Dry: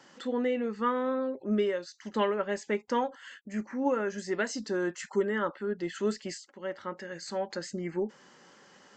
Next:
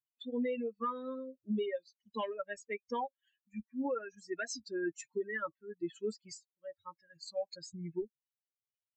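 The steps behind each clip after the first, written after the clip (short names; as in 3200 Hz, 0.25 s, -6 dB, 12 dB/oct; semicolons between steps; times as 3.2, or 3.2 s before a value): per-bin expansion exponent 3; limiter -29 dBFS, peak gain reduction 10.5 dB; gain +1.5 dB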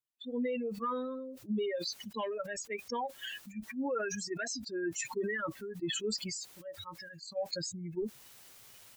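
sustainer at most 27 dB/s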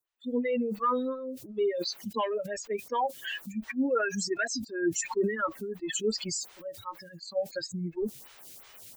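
photocell phaser 2.8 Hz; gain +8.5 dB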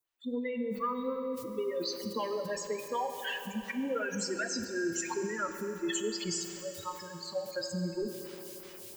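compressor, threshold -31 dBFS, peak gain reduction 9 dB; reverb RT60 3.9 s, pre-delay 3 ms, DRR 6 dB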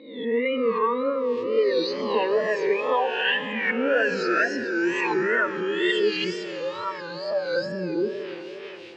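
spectral swells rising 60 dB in 0.75 s; wow and flutter 110 cents; speaker cabinet 180–3800 Hz, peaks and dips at 200 Hz -6 dB, 450 Hz +7 dB, 1800 Hz +5 dB, 2600 Hz +7 dB; gain +7 dB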